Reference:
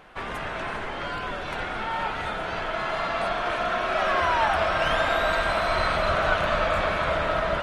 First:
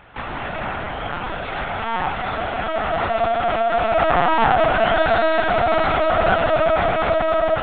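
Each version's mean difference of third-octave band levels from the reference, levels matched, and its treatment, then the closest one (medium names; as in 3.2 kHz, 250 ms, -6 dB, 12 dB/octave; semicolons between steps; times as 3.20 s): 7.0 dB: dynamic bell 720 Hz, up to +7 dB, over -40 dBFS, Q 2.9; on a send: tape echo 360 ms, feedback 26%, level -11.5 dB, low-pass 1.1 kHz; on the sum: LPC vocoder at 8 kHz pitch kept; trim +3.5 dB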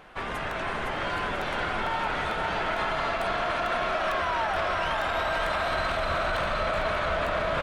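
2.5 dB: on a send: bouncing-ball echo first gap 510 ms, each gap 0.6×, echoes 5; on the sum: peak limiter -19 dBFS, peak gain reduction 11 dB; crackling interface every 0.45 s, samples 128, repeat, from 0.51 s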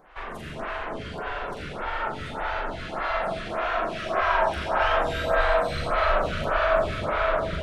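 5.0 dB: bass shelf 110 Hz +6.5 dB; on a send: flutter echo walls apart 7.1 m, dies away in 0.54 s; on the sum: algorithmic reverb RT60 3.8 s, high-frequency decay 0.35×, pre-delay 50 ms, DRR 1 dB; lamp-driven phase shifter 1.7 Hz; trim -3 dB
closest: second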